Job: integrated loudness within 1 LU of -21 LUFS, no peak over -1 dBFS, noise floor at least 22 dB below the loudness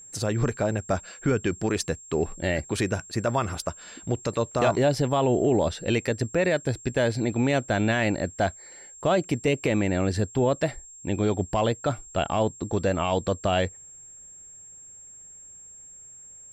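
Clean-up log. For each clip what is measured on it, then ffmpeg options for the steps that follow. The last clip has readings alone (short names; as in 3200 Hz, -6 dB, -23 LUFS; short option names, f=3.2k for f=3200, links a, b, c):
steady tone 7500 Hz; tone level -44 dBFS; loudness -26.0 LUFS; peak -10.5 dBFS; loudness target -21.0 LUFS
-> -af "bandreject=f=7.5k:w=30"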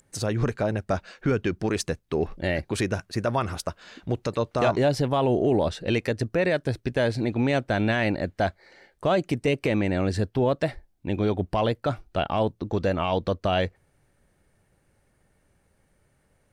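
steady tone none; loudness -26.0 LUFS; peak -10.5 dBFS; loudness target -21.0 LUFS
-> -af "volume=5dB"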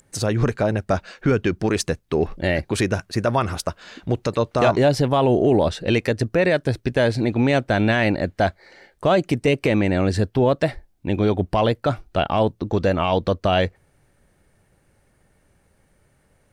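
loudness -21.0 LUFS; peak -5.5 dBFS; noise floor -63 dBFS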